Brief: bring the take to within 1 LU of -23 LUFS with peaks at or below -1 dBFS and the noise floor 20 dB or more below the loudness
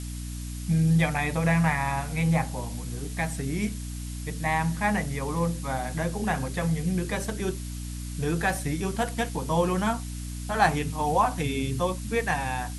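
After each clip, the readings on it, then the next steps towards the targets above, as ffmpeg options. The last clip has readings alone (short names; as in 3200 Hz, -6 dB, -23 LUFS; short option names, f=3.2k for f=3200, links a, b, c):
hum 60 Hz; harmonics up to 300 Hz; hum level -33 dBFS; noise floor -35 dBFS; noise floor target -48 dBFS; loudness -27.5 LUFS; peak -7.5 dBFS; loudness target -23.0 LUFS
-> -af "bandreject=f=60:t=h:w=4,bandreject=f=120:t=h:w=4,bandreject=f=180:t=h:w=4,bandreject=f=240:t=h:w=4,bandreject=f=300:t=h:w=4"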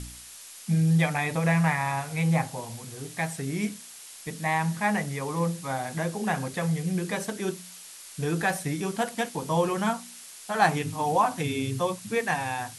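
hum none; noise floor -46 dBFS; noise floor target -48 dBFS
-> -af "afftdn=nr=6:nf=-46"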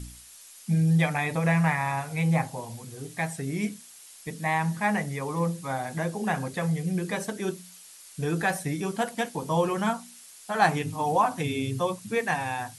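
noise floor -49 dBFS; loudness -27.5 LUFS; peak -7.5 dBFS; loudness target -23.0 LUFS
-> -af "volume=4.5dB"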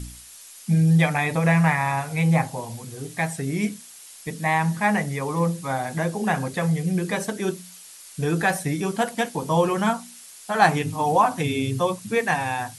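loudness -23.0 LUFS; peak -3.0 dBFS; noise floor -45 dBFS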